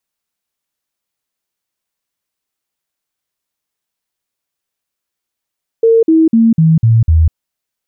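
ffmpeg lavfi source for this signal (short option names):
-f lavfi -i "aevalsrc='0.562*clip(min(mod(t,0.25),0.2-mod(t,0.25))/0.005,0,1)*sin(2*PI*455*pow(2,-floor(t/0.25)/2)*mod(t,0.25))':d=1.5:s=44100"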